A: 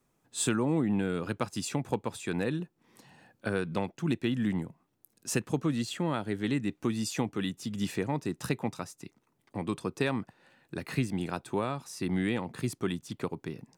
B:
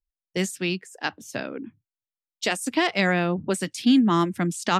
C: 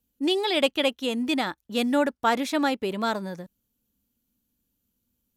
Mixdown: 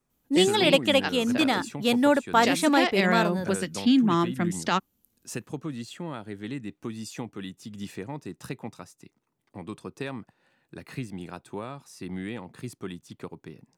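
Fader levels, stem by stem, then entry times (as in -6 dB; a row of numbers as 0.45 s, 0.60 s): -5.0 dB, -2.5 dB, +2.0 dB; 0.00 s, 0.00 s, 0.10 s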